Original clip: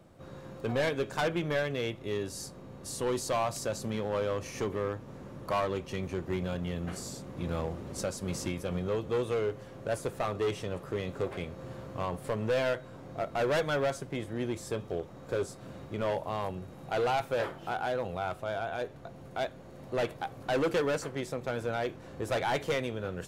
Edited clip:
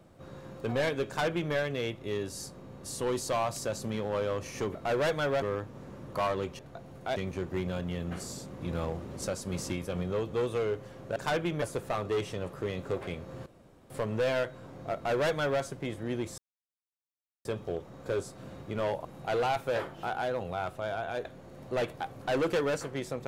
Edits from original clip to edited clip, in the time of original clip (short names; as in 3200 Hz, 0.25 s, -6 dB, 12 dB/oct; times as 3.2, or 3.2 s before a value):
1.07–1.53 copy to 9.92
11.76–12.2 room tone
13.25–13.92 copy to 4.75
14.68 insert silence 1.07 s
16.28–16.69 cut
18.89–19.46 move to 5.92